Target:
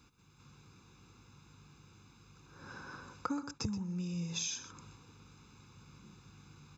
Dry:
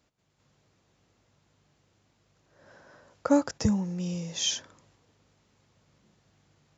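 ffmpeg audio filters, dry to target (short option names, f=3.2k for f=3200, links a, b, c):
-filter_complex "[0:a]aecho=1:1:0.8:0.99,acompressor=threshold=-41dB:ratio=6,asplit=2[a][b];[b]aecho=0:1:126:0.224[c];[a][c]amix=inputs=2:normalize=0,volume=4.5dB"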